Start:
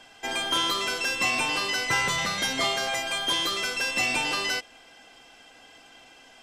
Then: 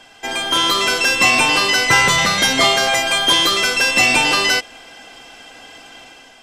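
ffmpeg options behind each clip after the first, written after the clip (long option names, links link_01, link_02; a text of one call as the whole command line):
ffmpeg -i in.wav -af "dynaudnorm=framelen=430:gausssize=3:maxgain=6dB,volume=6dB" out.wav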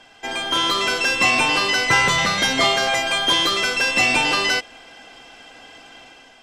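ffmpeg -i in.wav -af "highshelf=frequency=9200:gain=-11,volume=-3dB" out.wav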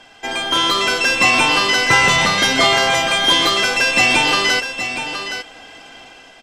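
ffmpeg -i in.wav -af "aecho=1:1:818:0.335,volume=3.5dB" out.wav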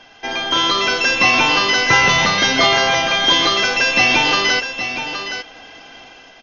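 ffmpeg -i in.wav -ar 24000 -c:a mp2 -b:a 64k out.mp2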